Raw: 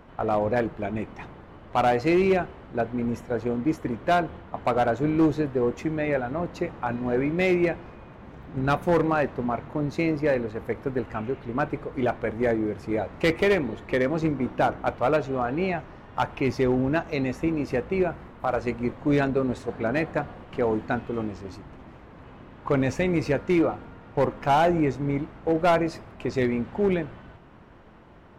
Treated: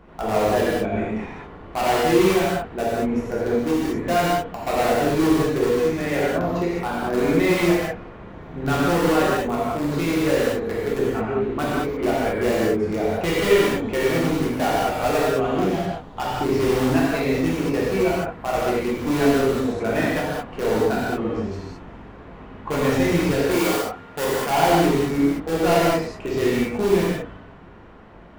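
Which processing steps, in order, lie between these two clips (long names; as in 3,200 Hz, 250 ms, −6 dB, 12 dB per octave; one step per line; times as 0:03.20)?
0:15.21–0:16.52: running median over 25 samples
high-shelf EQ 5,100 Hz −3.5 dB
in parallel at −8.5 dB: wrap-around overflow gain 17.5 dB
0:23.51–0:24.50: on the sum: spectral tilt +2 dB per octave
reverb whose tail is shaped and stops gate 240 ms flat, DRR −7.5 dB
level −5 dB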